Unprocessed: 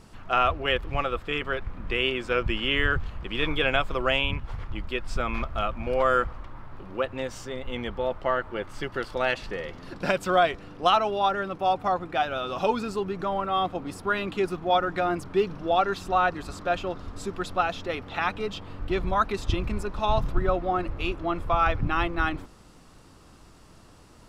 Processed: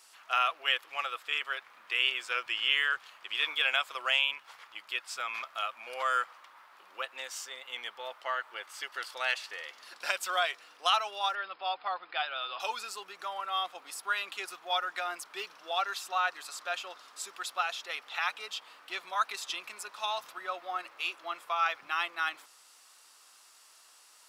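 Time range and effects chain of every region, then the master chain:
0:11.35–0:12.60: upward compression, threshold −35 dBFS + linear-phase brick-wall low-pass 5,200 Hz
whole clip: high-pass filter 800 Hz 12 dB per octave; spectral tilt +3.5 dB per octave; level −5.5 dB

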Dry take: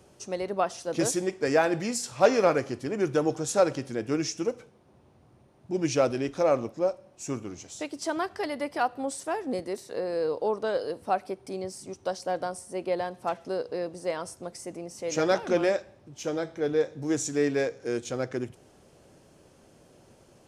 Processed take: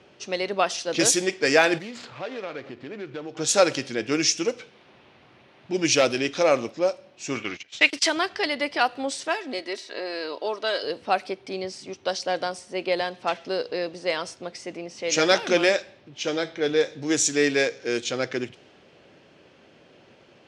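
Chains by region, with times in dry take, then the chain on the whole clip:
0:01.78–0:03.37: running median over 15 samples + downward compressor 3 to 1, threshold −39 dBFS
0:04.22–0:06.42: hard clipping −16 dBFS + one half of a high-frequency compander encoder only
0:07.35–0:08.09: noise gate −43 dBFS, range −22 dB + parametric band 2,100 Hz +13 dB 1.7 octaves
0:09.28–0:10.83: low-shelf EQ 420 Hz −10.5 dB + comb filter 3.1 ms, depth 56%
whole clip: meter weighting curve D; low-pass that shuts in the quiet parts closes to 2,500 Hz, open at −20.5 dBFS; level +3.5 dB

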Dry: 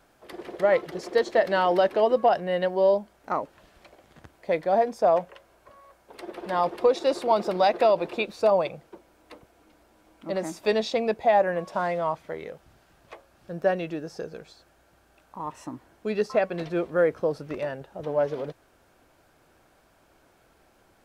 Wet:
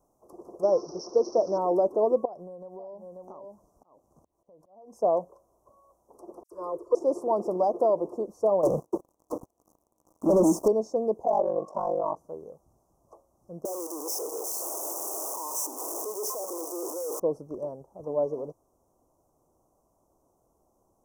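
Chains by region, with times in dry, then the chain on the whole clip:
0:00.63–0:01.58: spike at every zero crossing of −18.5 dBFS + Butterworth low-pass 5,600 Hz 96 dB per octave + high-shelf EQ 3,000 Hz +8.5 dB
0:02.25–0:04.97: single-tap delay 537 ms −9 dB + downward compressor 16 to 1, threshold −32 dBFS + volume swells 343 ms
0:06.43–0:06.95: downward expander −38 dBFS + phaser with its sweep stopped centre 780 Hz, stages 6 + all-pass dispersion lows, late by 81 ms, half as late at 2,400 Hz
0:08.63–0:10.68: high-pass filter 67 Hz + leveller curve on the samples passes 5
0:11.24–0:12.17: mid-hump overdrive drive 16 dB, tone 2,100 Hz, clips at −10.5 dBFS + ring modulation 24 Hz
0:13.65–0:17.20: sign of each sample alone + Butterworth high-pass 330 Hz + high-shelf EQ 3,500 Hz +10 dB
whole clip: Chebyshev band-stop filter 1,100–5,800 Hz, order 4; dynamic equaliser 360 Hz, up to +8 dB, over −36 dBFS, Q 0.84; level −7 dB

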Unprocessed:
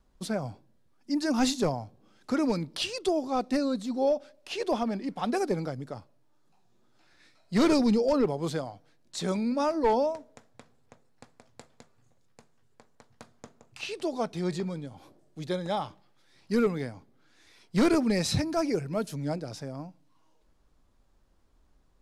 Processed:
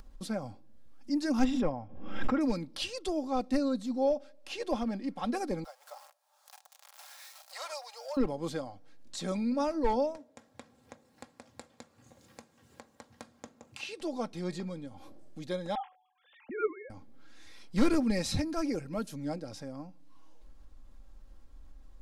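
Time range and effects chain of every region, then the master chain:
0:01.44–0:02.41: Savitzky-Golay smoothing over 25 samples + background raised ahead of every attack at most 57 dB per second
0:05.64–0:08.17: converter with a step at zero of −43 dBFS + Butterworth high-pass 650 Hz 48 dB per octave + parametric band 2,100 Hz −8 dB 2.5 octaves
0:10.17–0:14.01: high-pass filter 100 Hz + notch filter 1,300 Hz, Q 27
0:15.75–0:16.90: three sine waves on the formant tracks + hum removal 371.3 Hz, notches 2
whole clip: low-shelf EQ 64 Hz +12 dB; comb filter 3.7 ms, depth 49%; upward compression, threshold −34 dBFS; level −5.5 dB

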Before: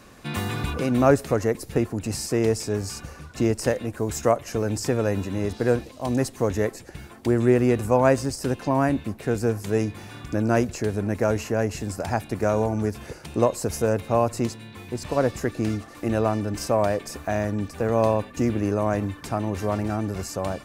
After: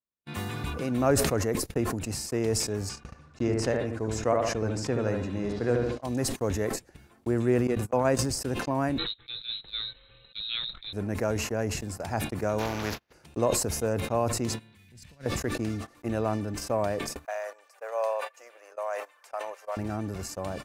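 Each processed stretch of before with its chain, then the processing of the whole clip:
0:02.89–0:06.03: low-pass filter 6,600 Hz + bucket-brigade delay 73 ms, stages 1,024, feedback 34%, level −4.5 dB
0:07.67–0:08.19: mains-hum notches 60/120/180 Hz + noise gate −20 dBFS, range −16 dB
0:08.98–0:10.93: mains-hum notches 60/120/180/240/300/360/420/480/540/600 Hz + voice inversion scrambler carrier 4,000 Hz + spectral tilt −3.5 dB per octave
0:12.58–0:13.12: compressing power law on the bin magnitudes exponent 0.42 + noise gate −34 dBFS, range −22 dB + moving average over 5 samples
0:14.75–0:15.26: flat-topped bell 590 Hz −13.5 dB 2.5 octaves + transient designer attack −9 dB, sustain +1 dB
0:17.25–0:19.77: elliptic high-pass filter 540 Hz, stop band 70 dB + parametric band 3,700 Hz −4.5 dB 0.42 octaves
whole clip: noise gate −30 dBFS, range −47 dB; level that may fall only so fast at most 36 dB per second; level −6.5 dB

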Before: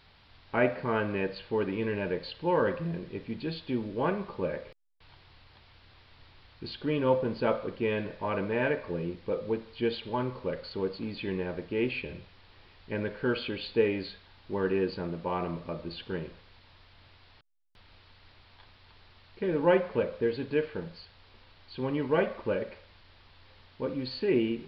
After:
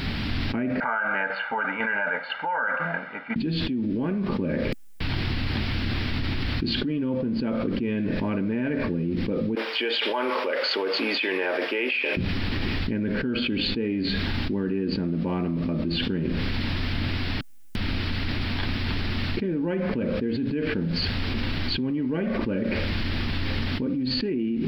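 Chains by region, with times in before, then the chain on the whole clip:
0:00.80–0:03.36: flat-topped band-pass 1,200 Hz, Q 1.5 + comb filter 1.4 ms, depth 89% + shaped tremolo saw down 2 Hz, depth 55%
0:09.55–0:12.17: high-pass filter 570 Hz 24 dB per octave + parametric band 4,200 Hz −6.5 dB 0.3 octaves
whole clip: graphic EQ with 10 bands 250 Hz +12 dB, 500 Hz −7 dB, 1,000 Hz −9 dB, 4,000 Hz −6 dB; envelope flattener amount 100%; level −8.5 dB

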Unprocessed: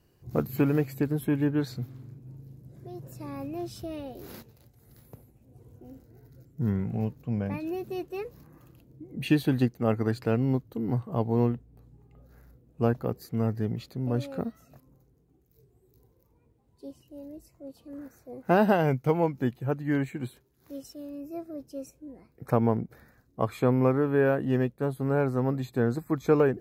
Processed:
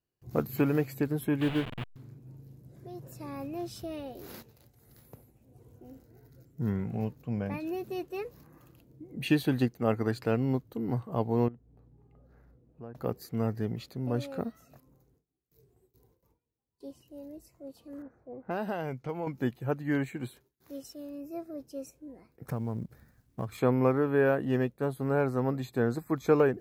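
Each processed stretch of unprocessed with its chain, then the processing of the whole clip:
0:01.41–0:01.96: hold until the input has moved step −30.5 dBFS + high shelf with overshoot 4,200 Hz −11 dB, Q 3
0:11.48–0:12.95: low-pass filter 1,200 Hz 6 dB per octave + downward compressor 2 to 1, threshold −51 dBFS
0:18.02–0:19.27: low-pass that shuts in the quiet parts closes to 870 Hz, open at −21 dBFS + downward compressor 2 to 1, threshold −36 dBFS
0:22.46–0:23.58: mu-law and A-law mismatch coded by A + bass and treble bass +13 dB, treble +4 dB + downward compressor 8 to 1, threshold −27 dBFS
whole clip: noise gate with hold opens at −54 dBFS; low-shelf EQ 290 Hz −4.5 dB

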